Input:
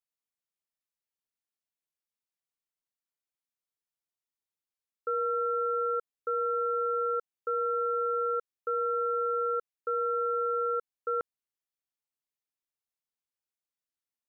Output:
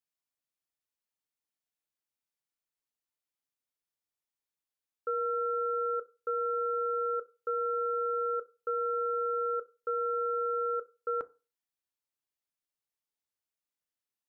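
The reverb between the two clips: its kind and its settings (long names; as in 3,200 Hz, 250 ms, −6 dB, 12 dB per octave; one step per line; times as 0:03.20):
feedback delay network reverb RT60 0.31 s, low-frequency decay 1×, high-frequency decay 0.4×, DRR 13.5 dB
level −1 dB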